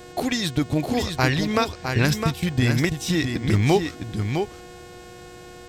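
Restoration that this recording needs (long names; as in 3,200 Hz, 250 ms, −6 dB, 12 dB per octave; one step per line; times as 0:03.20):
hum removal 360.9 Hz, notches 24
notch filter 480 Hz, Q 30
echo removal 659 ms −6 dB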